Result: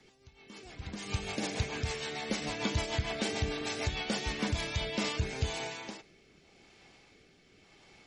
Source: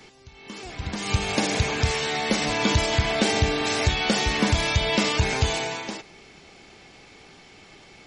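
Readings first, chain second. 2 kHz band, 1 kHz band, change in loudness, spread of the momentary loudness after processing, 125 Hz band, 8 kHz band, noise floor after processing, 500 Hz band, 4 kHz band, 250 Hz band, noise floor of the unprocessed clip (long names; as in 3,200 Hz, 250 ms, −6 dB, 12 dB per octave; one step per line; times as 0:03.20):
−12.0 dB, −13.0 dB, −11.5 dB, 12 LU, −10.5 dB, −11.0 dB, −63 dBFS, −11.0 dB, −11.5 dB, −10.5 dB, −50 dBFS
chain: rotating-speaker cabinet horn 6.7 Hz, later 0.9 Hz, at 0:04.43
level −9 dB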